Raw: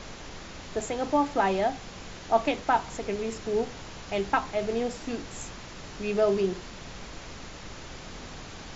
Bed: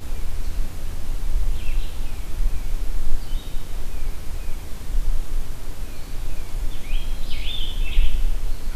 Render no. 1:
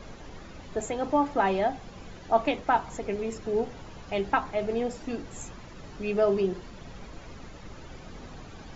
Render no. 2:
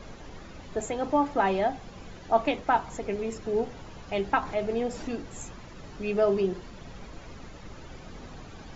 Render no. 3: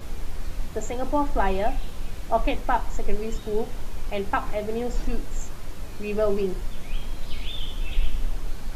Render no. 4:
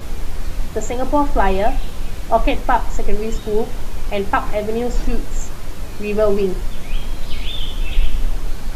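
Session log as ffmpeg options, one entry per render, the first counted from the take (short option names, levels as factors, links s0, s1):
-af "afftdn=nr=10:nf=-43"
-filter_complex "[0:a]asettb=1/sr,asplit=3[s0][s1][s2];[s0]atrim=end=4.434[s3];[s1]atrim=start=4.43:end=5.15,asetpts=PTS-STARTPTS,afade=t=in:d=0.004:c=qsin,afade=t=out:st=0.716:d=0.004:c=qsin,acompressor=mode=upward:threshold=0.0316:ratio=2.5:attack=3.2:release=140:knee=2.83:detection=peak[s4];[s2]atrim=start=5.146[s5];[s3][s4]acrossfade=d=0.004:c1=hsin:c2=qsin[s6];[s6][s5]acrossfade=d=0.004:c1=qsin:c2=hsin"
-filter_complex "[1:a]volume=0.531[s0];[0:a][s0]amix=inputs=2:normalize=0"
-af "volume=2.37,alimiter=limit=0.794:level=0:latency=1"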